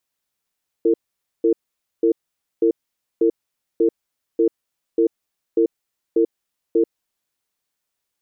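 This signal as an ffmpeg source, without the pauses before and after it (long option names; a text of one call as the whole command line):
ffmpeg -f lavfi -i "aevalsrc='0.168*(sin(2*PI*335*t)+sin(2*PI*455*t))*clip(min(mod(t,0.59),0.09-mod(t,0.59))/0.005,0,1)':duration=6.01:sample_rate=44100" out.wav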